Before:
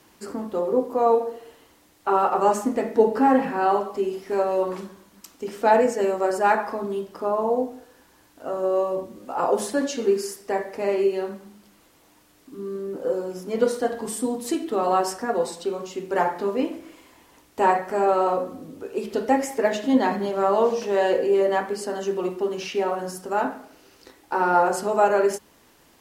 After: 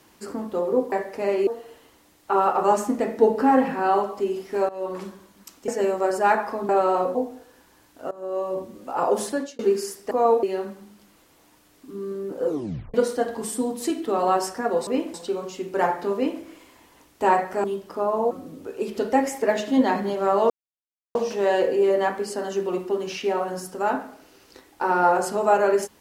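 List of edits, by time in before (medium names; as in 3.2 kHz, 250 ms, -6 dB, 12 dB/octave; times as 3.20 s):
0.92–1.24 s: swap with 10.52–11.07 s
4.46–4.81 s: fade in, from -19 dB
5.45–5.88 s: delete
6.89–7.56 s: swap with 18.01–18.47 s
8.52–9.03 s: fade in, from -19.5 dB
9.69–10.00 s: fade out linear
13.10 s: tape stop 0.48 s
16.52–16.79 s: copy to 15.51 s
20.66 s: insert silence 0.65 s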